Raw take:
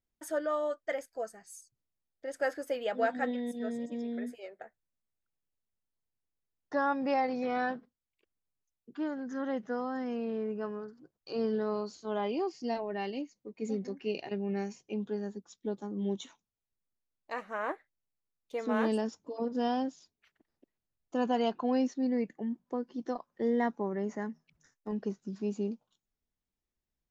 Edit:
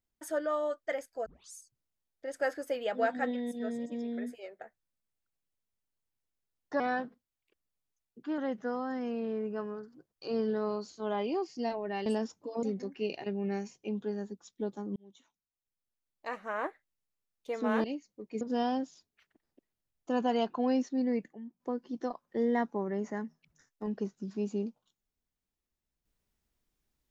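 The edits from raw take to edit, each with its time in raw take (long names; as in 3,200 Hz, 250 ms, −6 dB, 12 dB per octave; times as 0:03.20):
0:01.26: tape start 0.29 s
0:06.80–0:07.51: remove
0:09.09–0:09.43: remove
0:13.11–0:13.68: swap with 0:18.89–0:19.46
0:16.01–0:17.41: fade in
0:22.38–0:22.65: clip gain −10 dB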